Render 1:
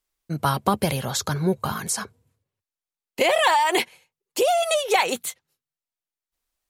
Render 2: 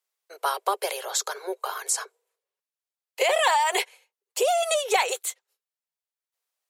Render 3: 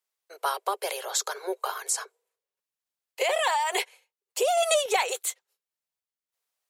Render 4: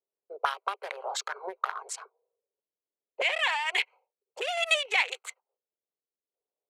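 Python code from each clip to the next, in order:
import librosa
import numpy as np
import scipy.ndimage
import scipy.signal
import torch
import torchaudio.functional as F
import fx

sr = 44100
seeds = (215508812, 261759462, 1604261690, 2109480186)

y1 = scipy.signal.sosfilt(scipy.signal.butter(16, 390.0, 'highpass', fs=sr, output='sos'), x)
y1 = fx.dynamic_eq(y1, sr, hz=7500.0, q=3.1, threshold_db=-47.0, ratio=4.0, max_db=6)
y1 = y1 * 10.0 ** (-2.5 / 20.0)
y2 = fx.tremolo_random(y1, sr, seeds[0], hz=3.5, depth_pct=55)
y2 = y2 * 10.0 ** (2.0 / 20.0)
y3 = fx.wiener(y2, sr, points=25)
y3 = fx.auto_wah(y3, sr, base_hz=420.0, top_hz=2400.0, q=2.2, full_db=-26.5, direction='up')
y3 = fx.cheby_harmonics(y3, sr, harmonics=(5,), levels_db=(-27,), full_scale_db=-17.0)
y3 = y3 * 10.0 ** (7.0 / 20.0)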